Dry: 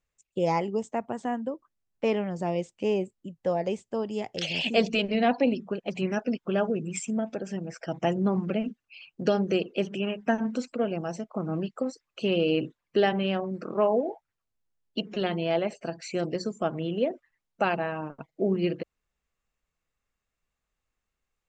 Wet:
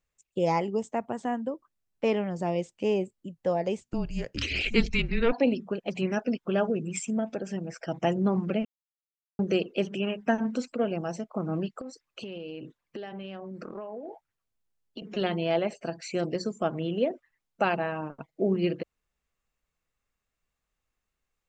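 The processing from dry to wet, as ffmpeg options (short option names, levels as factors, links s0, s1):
-filter_complex "[0:a]asplit=3[s0][s1][s2];[s0]afade=t=out:st=3.8:d=0.02[s3];[s1]afreqshift=-240,afade=t=in:st=3.8:d=0.02,afade=t=out:st=5.31:d=0.02[s4];[s2]afade=t=in:st=5.31:d=0.02[s5];[s3][s4][s5]amix=inputs=3:normalize=0,asettb=1/sr,asplit=3[s6][s7][s8];[s6]atrim=end=11.814[s9];[s7]atrim=start=11.81:end=15.02,asetpts=PTS-STARTPTS,afade=t=in:d=0.004:c=qsin,afade=t=out:st=3.206:d=0.004:c=qsin,acompressor=threshold=0.0178:ratio=10:attack=3.2:release=140:knee=1:detection=peak[s10];[s8]atrim=start=15.016[s11];[s9][s10]acrossfade=d=0.004:c1=hsin:c2=qsin[s12];[s12][s11]acrossfade=d=0.004:c1=qsin:c2=hsin,asplit=3[s13][s14][s15];[s13]atrim=end=8.65,asetpts=PTS-STARTPTS,afade=t=out:st=8.646:d=0.004:c=hsin[s16];[s14]atrim=start=8.65:end=9.39,asetpts=PTS-STARTPTS,volume=0[s17];[s15]atrim=start=9.39,asetpts=PTS-STARTPTS,afade=t=in:d=0.004:c=hsin[s18];[s16][s17][s18]concat=n=3:v=0:a=1"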